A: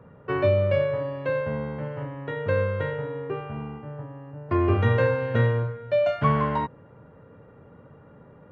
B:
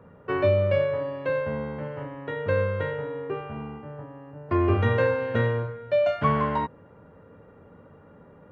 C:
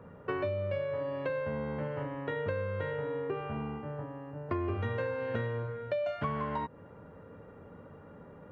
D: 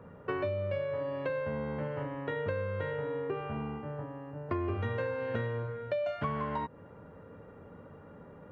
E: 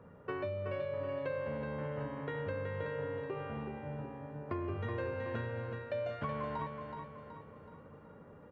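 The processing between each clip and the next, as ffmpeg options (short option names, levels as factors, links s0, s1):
-af "equalizer=f=130:w=6.9:g=-12"
-af "acompressor=threshold=0.0282:ratio=6"
-af anull
-af "aecho=1:1:374|748|1122|1496|1870:0.501|0.226|0.101|0.0457|0.0206,volume=0.562"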